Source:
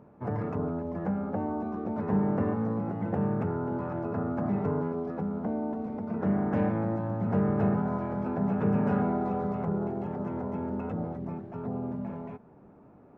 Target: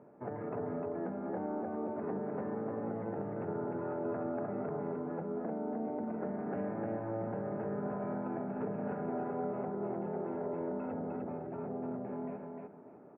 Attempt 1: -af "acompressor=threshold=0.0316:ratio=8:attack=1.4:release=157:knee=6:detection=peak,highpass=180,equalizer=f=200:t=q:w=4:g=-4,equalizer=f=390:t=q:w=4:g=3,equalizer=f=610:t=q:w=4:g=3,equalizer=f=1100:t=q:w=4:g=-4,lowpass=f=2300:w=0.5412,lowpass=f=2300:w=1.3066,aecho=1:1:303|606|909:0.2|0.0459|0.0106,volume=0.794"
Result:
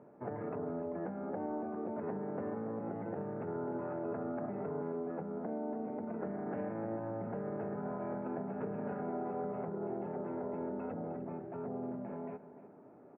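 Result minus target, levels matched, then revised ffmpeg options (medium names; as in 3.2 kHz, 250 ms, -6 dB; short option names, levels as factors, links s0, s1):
echo-to-direct -11 dB
-af "acompressor=threshold=0.0316:ratio=8:attack=1.4:release=157:knee=6:detection=peak,highpass=180,equalizer=f=200:t=q:w=4:g=-4,equalizer=f=390:t=q:w=4:g=3,equalizer=f=610:t=q:w=4:g=3,equalizer=f=1100:t=q:w=4:g=-4,lowpass=f=2300:w=0.5412,lowpass=f=2300:w=1.3066,aecho=1:1:303|606|909:0.708|0.163|0.0375,volume=0.794"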